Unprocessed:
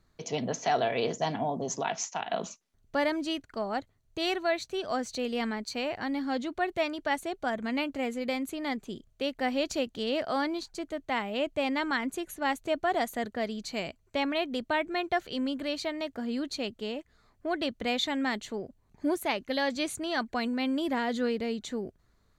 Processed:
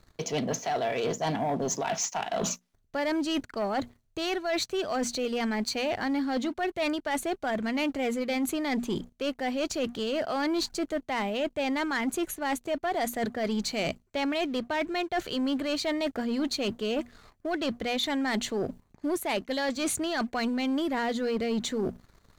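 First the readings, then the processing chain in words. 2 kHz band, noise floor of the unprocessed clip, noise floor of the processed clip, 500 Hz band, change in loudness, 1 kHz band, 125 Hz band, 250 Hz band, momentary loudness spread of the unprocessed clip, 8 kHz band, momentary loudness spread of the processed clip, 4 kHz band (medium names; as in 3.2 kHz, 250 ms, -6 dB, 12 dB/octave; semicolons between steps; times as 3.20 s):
0.0 dB, -68 dBFS, -68 dBFS, +1.5 dB, +1.5 dB, 0.0 dB, +4.0 dB, +2.5 dB, 6 LU, +6.0 dB, 4 LU, +1.5 dB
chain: hum notches 60/120/180/240 Hz; reverse; compression 12:1, threshold -38 dBFS, peak gain reduction 16 dB; reverse; waveshaping leveller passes 2; trim +6.5 dB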